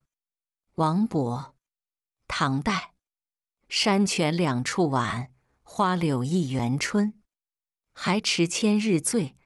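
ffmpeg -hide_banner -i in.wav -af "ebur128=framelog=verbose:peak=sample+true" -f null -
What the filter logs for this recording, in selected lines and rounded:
Integrated loudness:
  I:         -25.3 LUFS
  Threshold: -35.9 LUFS
Loudness range:
  LRA:         3.9 LU
  Threshold: -46.8 LUFS
  LRA low:   -29.3 LUFS
  LRA high:  -25.5 LUFS
Sample peak:
  Peak:      -12.3 dBFS
True peak:
  Peak:      -12.3 dBFS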